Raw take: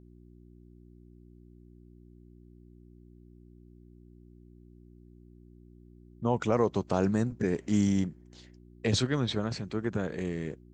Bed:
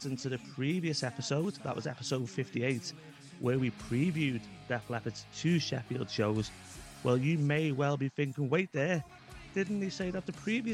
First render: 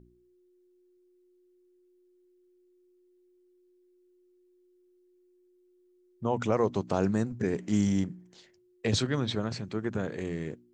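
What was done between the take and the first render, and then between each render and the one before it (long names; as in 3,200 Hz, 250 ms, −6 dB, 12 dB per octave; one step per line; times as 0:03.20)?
hum removal 60 Hz, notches 5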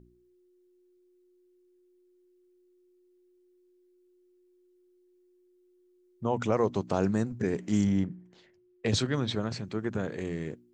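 0:07.84–0:08.86: bass and treble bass +1 dB, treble −13 dB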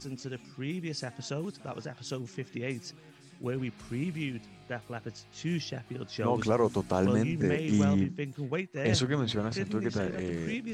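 mix in bed −3 dB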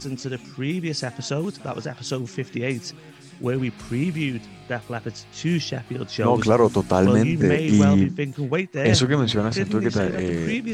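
level +9.5 dB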